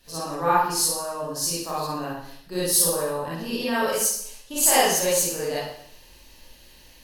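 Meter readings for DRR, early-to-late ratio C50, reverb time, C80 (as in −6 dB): −10.0 dB, −3.5 dB, 0.65 s, 3.0 dB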